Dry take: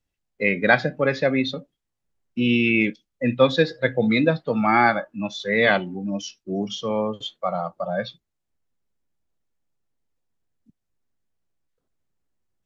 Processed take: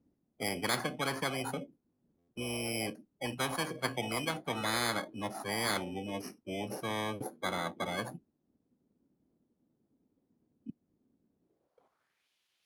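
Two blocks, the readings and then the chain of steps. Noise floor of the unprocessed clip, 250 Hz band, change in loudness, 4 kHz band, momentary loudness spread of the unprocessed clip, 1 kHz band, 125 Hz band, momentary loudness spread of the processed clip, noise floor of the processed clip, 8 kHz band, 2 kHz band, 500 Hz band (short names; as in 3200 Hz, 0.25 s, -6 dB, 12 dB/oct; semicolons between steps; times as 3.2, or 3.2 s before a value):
-80 dBFS, -16.0 dB, -13.5 dB, -6.5 dB, 11 LU, -12.0 dB, -12.5 dB, 11 LU, -81 dBFS, n/a, -14.5 dB, -15.5 dB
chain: FFT order left unsorted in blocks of 16 samples; high shelf 4200 Hz +5 dB; band-pass sweep 260 Hz -> 2900 Hz, 11.39–12.29; stuck buffer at 2.18, samples 512, times 8; spectral compressor 10:1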